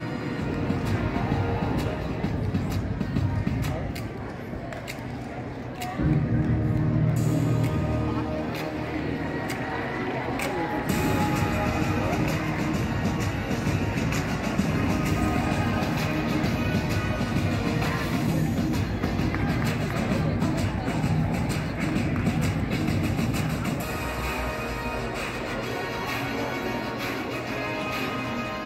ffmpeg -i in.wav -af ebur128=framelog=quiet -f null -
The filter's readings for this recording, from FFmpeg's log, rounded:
Integrated loudness:
  I:         -27.0 LUFS
  Threshold: -37.0 LUFS
Loudness range:
  LRA:         3.7 LU
  Threshold: -46.9 LUFS
  LRA low:   -29.3 LUFS
  LRA high:  -25.6 LUFS